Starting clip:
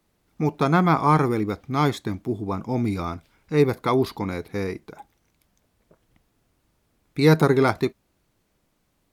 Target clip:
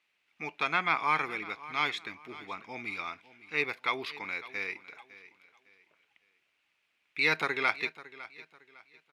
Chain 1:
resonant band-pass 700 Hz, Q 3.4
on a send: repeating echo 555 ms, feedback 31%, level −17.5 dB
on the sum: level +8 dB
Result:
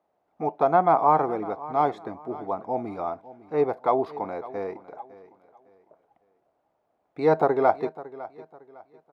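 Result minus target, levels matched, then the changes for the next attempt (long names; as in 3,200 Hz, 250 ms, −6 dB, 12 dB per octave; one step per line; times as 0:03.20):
2,000 Hz band −17.0 dB
change: resonant band-pass 2,500 Hz, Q 3.4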